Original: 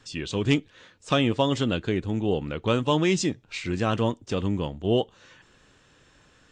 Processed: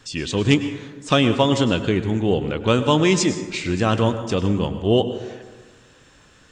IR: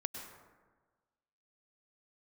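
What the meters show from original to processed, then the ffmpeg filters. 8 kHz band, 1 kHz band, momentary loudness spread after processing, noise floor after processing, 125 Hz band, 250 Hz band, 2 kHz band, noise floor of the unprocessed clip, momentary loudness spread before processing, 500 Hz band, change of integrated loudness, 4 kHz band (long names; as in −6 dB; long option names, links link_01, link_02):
+8.0 dB, +6.0 dB, 9 LU, −52 dBFS, +6.0 dB, +6.0 dB, +6.0 dB, −59 dBFS, 7 LU, +6.0 dB, +6.0 dB, +6.0 dB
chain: -filter_complex "[0:a]asplit=2[link_01][link_02];[1:a]atrim=start_sample=2205,highshelf=frequency=6600:gain=9.5[link_03];[link_02][link_03]afir=irnorm=-1:irlink=0,volume=0dB[link_04];[link_01][link_04]amix=inputs=2:normalize=0"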